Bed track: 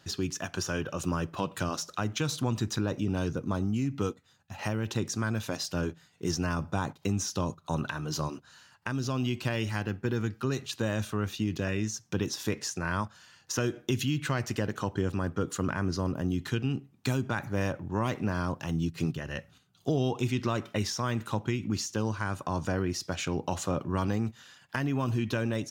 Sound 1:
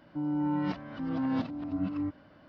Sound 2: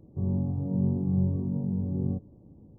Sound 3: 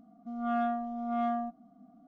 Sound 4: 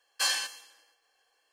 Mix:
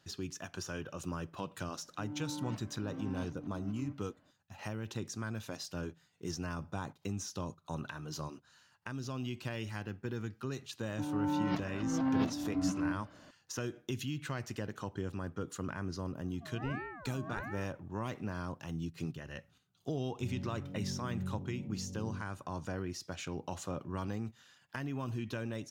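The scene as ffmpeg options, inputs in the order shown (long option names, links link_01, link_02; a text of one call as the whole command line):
ffmpeg -i bed.wav -i cue0.wav -i cue1.wav -i cue2.wav -filter_complex "[1:a]asplit=2[link_01][link_02];[0:a]volume=-9dB[link_03];[link_02]bandreject=frequency=50:width_type=h:width=6,bandreject=frequency=100:width_type=h:width=6,bandreject=frequency=150:width_type=h:width=6,bandreject=frequency=200:width_type=h:width=6,bandreject=frequency=250:width_type=h:width=6,bandreject=frequency=300:width_type=h:width=6,bandreject=frequency=350:width_type=h:width=6,bandreject=frequency=400:width_type=h:width=6[link_04];[3:a]aeval=exprs='val(0)*sin(2*PI*750*n/s+750*0.5/1.4*sin(2*PI*1.4*n/s))':channel_layout=same[link_05];[link_01]atrim=end=2.48,asetpts=PTS-STARTPTS,volume=-12.5dB,afade=type=in:duration=0.004:curve=hsin,afade=type=out:start_time=2.476:duration=0.004:curve=hsin,adelay=1830[link_06];[link_04]atrim=end=2.48,asetpts=PTS-STARTPTS,volume=-0.5dB,afade=type=in:duration=0.004:curve=hsin,afade=type=out:start_time=2.476:duration=0.004:curve=hsin,adelay=10830[link_07];[link_05]atrim=end=2.07,asetpts=PTS-STARTPTS,volume=-9.5dB,afade=type=in:duration=0.004:curve=hsin,afade=type=out:start_time=2.066:duration=0.004:curve=hsin,adelay=16150[link_08];[2:a]atrim=end=2.78,asetpts=PTS-STARTPTS,volume=-14dB,afade=type=in:duration=0.004:curve=hsin,afade=type=out:start_time=2.776:duration=0.004:curve=hsin,adelay=883764S[link_09];[link_03][link_06][link_07][link_08][link_09]amix=inputs=5:normalize=0" out.wav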